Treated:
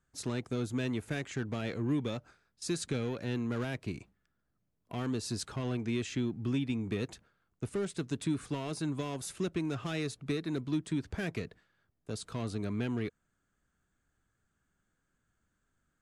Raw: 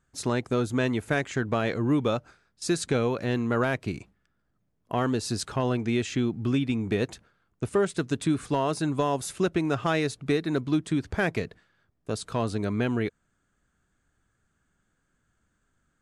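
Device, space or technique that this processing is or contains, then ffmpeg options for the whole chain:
one-band saturation: -filter_complex "[0:a]acrossover=split=370|2100[link_01][link_02][link_03];[link_02]asoftclip=type=tanh:threshold=-35.5dB[link_04];[link_01][link_04][link_03]amix=inputs=3:normalize=0,volume=-6dB"

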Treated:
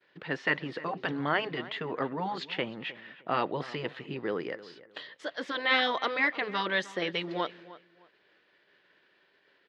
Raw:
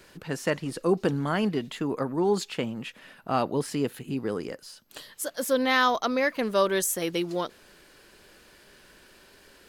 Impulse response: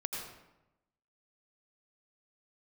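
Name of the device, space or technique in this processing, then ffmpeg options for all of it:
kitchen radio: -filter_complex "[0:a]agate=range=-33dB:threshold=-45dB:ratio=3:detection=peak,afftfilt=real='re*lt(hypot(re,im),0.355)':imag='im*lt(hypot(re,im),0.355)':win_size=1024:overlap=0.75,highpass=190,equalizer=frequency=230:width_type=q:width=4:gain=-7,equalizer=frequency=1900:width_type=q:width=4:gain=7,equalizer=frequency=3400:width_type=q:width=4:gain=3,lowpass=frequency=3900:width=0.5412,lowpass=frequency=3900:width=1.3066,asplit=2[link_01][link_02];[link_02]adelay=308,lowpass=frequency=2600:poles=1,volume=-17dB,asplit=2[link_03][link_04];[link_04]adelay=308,lowpass=frequency=2600:poles=1,volume=0.25[link_05];[link_01][link_03][link_05]amix=inputs=3:normalize=0"

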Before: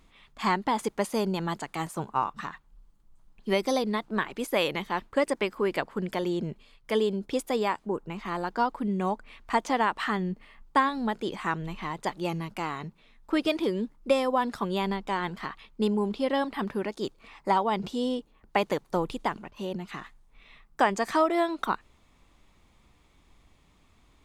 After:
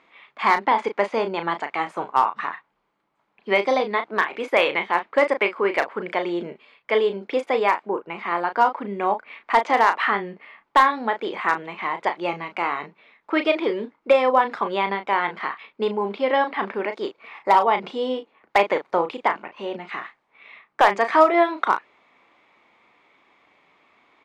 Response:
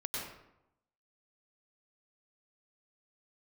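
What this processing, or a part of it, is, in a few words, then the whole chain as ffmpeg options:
megaphone: -filter_complex "[0:a]highpass=450,lowpass=2500,equalizer=frequency=2200:width_type=o:width=0.28:gain=6,asoftclip=type=hard:threshold=-16dB,asplit=2[link_01][link_02];[link_02]adelay=35,volume=-8.5dB[link_03];[link_01][link_03]amix=inputs=2:normalize=0,asettb=1/sr,asplit=3[link_04][link_05][link_06];[link_04]atrim=end=0.664[link_07];[link_05]atrim=start=0.66:end=1.89,asetpts=PTS-STARTPTS,afade=type=in:duration=0.004:curve=qsin,afade=type=out:start_time=1.226:duration=0.004:curve=qsin,lowpass=7600[link_08];[link_06]atrim=start=1.886[link_09];[link_07][link_08]acrossfade=duration=0.004:curve1=hsin:curve2=qsin[link_10];[link_10][link_09]acrossfade=duration=0.004:curve1=qsin:curve2=hsin,volume=8.5dB"

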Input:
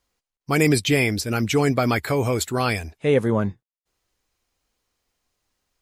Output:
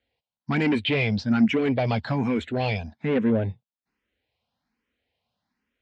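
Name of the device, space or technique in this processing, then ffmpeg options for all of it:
barber-pole phaser into a guitar amplifier: -filter_complex "[0:a]asplit=2[link_01][link_02];[link_02]afreqshift=1.2[link_03];[link_01][link_03]amix=inputs=2:normalize=1,asoftclip=type=tanh:threshold=-20dB,highpass=81,equalizer=frequency=230:width_type=q:width=4:gain=8,equalizer=frequency=360:width_type=q:width=4:gain=-7,equalizer=frequency=1200:width_type=q:width=4:gain=-8,lowpass=frequency=3800:width=0.5412,lowpass=frequency=3800:width=1.3066,volume=3dB"

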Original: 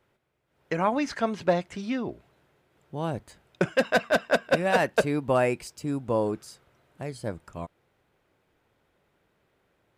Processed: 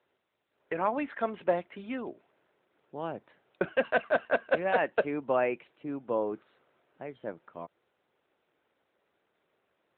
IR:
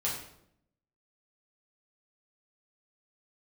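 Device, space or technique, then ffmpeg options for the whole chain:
telephone: -filter_complex "[0:a]asplit=3[link_01][link_02][link_03];[link_01]afade=type=out:start_time=4.19:duration=0.02[link_04];[link_02]adynamicequalizer=threshold=0.00112:dfrequency=8200:dqfactor=5.3:tfrequency=8200:tqfactor=5.3:attack=5:release=100:ratio=0.375:range=1.5:mode=boostabove:tftype=bell,afade=type=in:start_time=4.19:duration=0.02,afade=type=out:start_time=5.26:duration=0.02[link_05];[link_03]afade=type=in:start_time=5.26:duration=0.02[link_06];[link_04][link_05][link_06]amix=inputs=3:normalize=0,highpass=280,lowpass=3600,volume=-3dB" -ar 8000 -c:a libopencore_amrnb -b:a 12200

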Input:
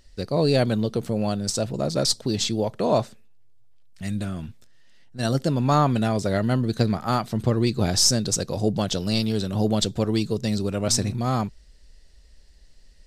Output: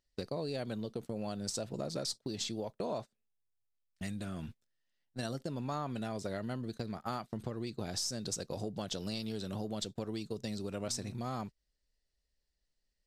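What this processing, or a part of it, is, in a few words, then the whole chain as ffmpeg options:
serial compression, leveller first: -af "acompressor=threshold=-28dB:ratio=1.5,acompressor=threshold=-34dB:ratio=6,agate=range=-25dB:threshold=-40dB:ratio=16:detection=peak,lowshelf=frequency=130:gain=-7.5"

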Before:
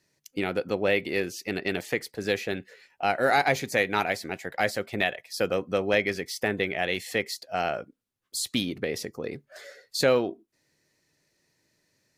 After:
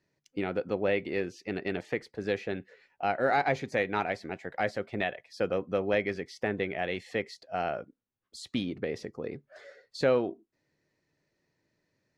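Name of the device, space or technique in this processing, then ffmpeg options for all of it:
through cloth: -af "lowpass=7000,highshelf=frequency=2900:gain=-12,volume=-2.5dB"

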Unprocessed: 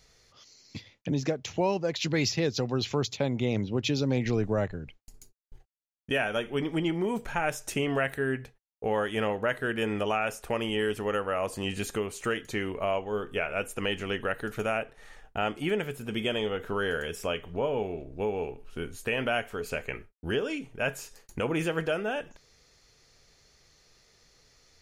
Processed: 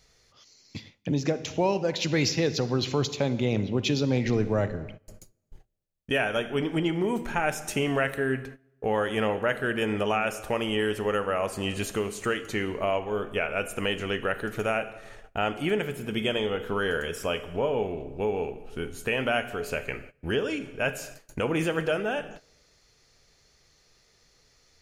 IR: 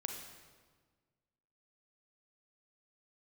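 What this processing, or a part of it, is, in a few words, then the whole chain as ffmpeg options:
keyed gated reverb: -filter_complex "[0:a]asplit=3[link_01][link_02][link_03];[1:a]atrim=start_sample=2205[link_04];[link_02][link_04]afir=irnorm=-1:irlink=0[link_05];[link_03]apad=whole_len=1094193[link_06];[link_05][link_06]sidechaingate=range=-18dB:threshold=-49dB:ratio=16:detection=peak,volume=-4dB[link_07];[link_01][link_07]amix=inputs=2:normalize=0,volume=-1.5dB"

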